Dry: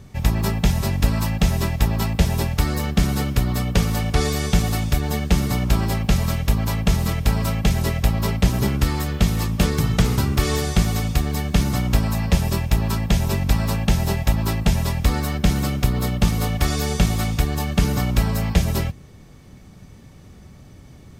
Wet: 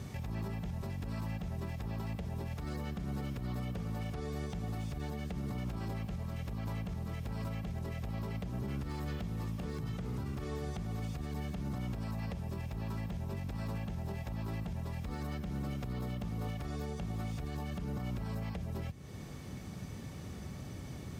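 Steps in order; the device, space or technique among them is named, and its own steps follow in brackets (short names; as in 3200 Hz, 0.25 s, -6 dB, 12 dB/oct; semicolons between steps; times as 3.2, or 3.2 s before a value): podcast mastering chain (HPF 62 Hz 12 dB/oct; de-esser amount 95%; compressor 4:1, threshold -36 dBFS, peak gain reduction 19.5 dB; limiter -32 dBFS, peak gain reduction 9 dB; gain +1.5 dB; MP3 128 kbps 44100 Hz)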